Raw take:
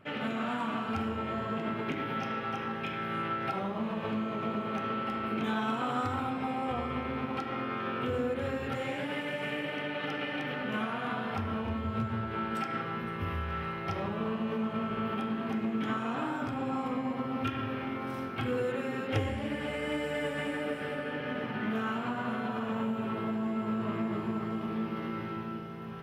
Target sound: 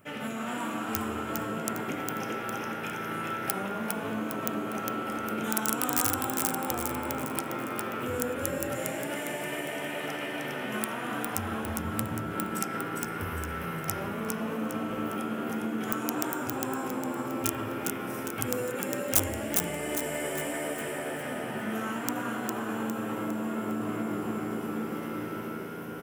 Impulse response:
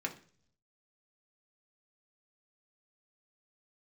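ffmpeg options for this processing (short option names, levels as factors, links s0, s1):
-filter_complex "[0:a]aeval=exprs='(mod(12.6*val(0)+1,2)-1)/12.6':c=same,aexciter=amount=4.8:drive=8.5:freq=5900,asplit=7[s0][s1][s2][s3][s4][s5][s6];[s1]adelay=406,afreqshift=80,volume=0.668[s7];[s2]adelay=812,afreqshift=160,volume=0.295[s8];[s3]adelay=1218,afreqshift=240,volume=0.129[s9];[s4]adelay=1624,afreqshift=320,volume=0.0569[s10];[s5]adelay=2030,afreqshift=400,volume=0.0251[s11];[s6]adelay=2436,afreqshift=480,volume=0.011[s12];[s0][s7][s8][s9][s10][s11][s12]amix=inputs=7:normalize=0,volume=0.841"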